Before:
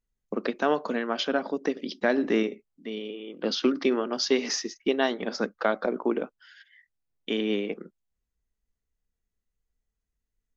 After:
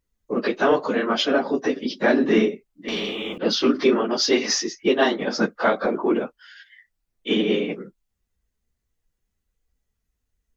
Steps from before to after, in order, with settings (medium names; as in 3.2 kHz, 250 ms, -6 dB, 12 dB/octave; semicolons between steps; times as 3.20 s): phase randomisation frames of 50 ms; in parallel at -10.5 dB: saturation -21.5 dBFS, distortion -13 dB; 2.88–3.38 s: on the sum: spectrum-flattening compressor 2:1; trim +4.5 dB